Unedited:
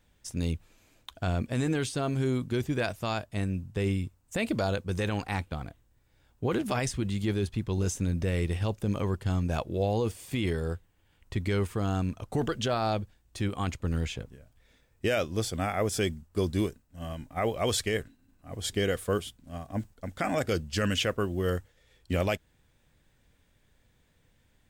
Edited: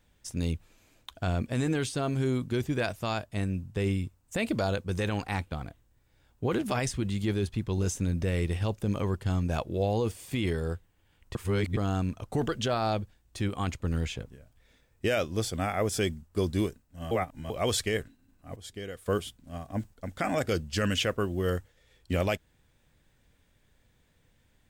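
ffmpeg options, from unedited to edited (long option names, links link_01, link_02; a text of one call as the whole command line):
ffmpeg -i in.wav -filter_complex "[0:a]asplit=7[link_01][link_02][link_03][link_04][link_05][link_06][link_07];[link_01]atrim=end=11.352[link_08];[link_02]atrim=start=11.348:end=11.772,asetpts=PTS-STARTPTS,areverse[link_09];[link_03]atrim=start=11.768:end=17.112[link_10];[link_04]atrim=start=17.108:end=17.502,asetpts=PTS-STARTPTS,areverse[link_11];[link_05]atrim=start=17.498:end=18.562[link_12];[link_06]atrim=start=18.558:end=19.062,asetpts=PTS-STARTPTS,volume=-11.5dB[link_13];[link_07]atrim=start=19.058[link_14];[link_08][link_09]acrossfade=duration=0.004:curve1=hsin:curve2=hsin[link_15];[link_15][link_10]acrossfade=duration=0.004:curve1=hsin:curve2=hsin[link_16];[link_16][link_11]acrossfade=duration=0.004:curve1=hsin:curve2=hsin[link_17];[link_17][link_12]acrossfade=duration=0.004:curve1=hsin:curve2=hsin[link_18];[link_18][link_13]acrossfade=duration=0.004:curve1=hsin:curve2=hsin[link_19];[link_19][link_14]acrossfade=duration=0.004:curve1=hsin:curve2=hsin" out.wav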